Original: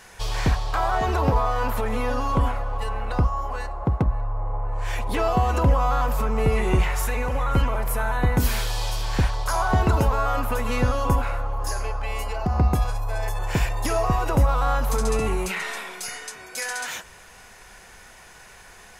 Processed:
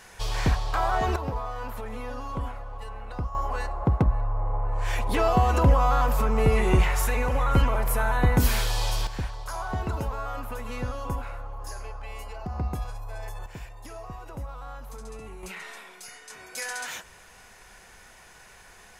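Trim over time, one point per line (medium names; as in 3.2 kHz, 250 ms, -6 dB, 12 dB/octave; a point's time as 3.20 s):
-2 dB
from 1.16 s -10.5 dB
from 3.35 s 0 dB
from 9.07 s -10 dB
from 13.46 s -18 dB
from 15.43 s -11 dB
from 16.30 s -4 dB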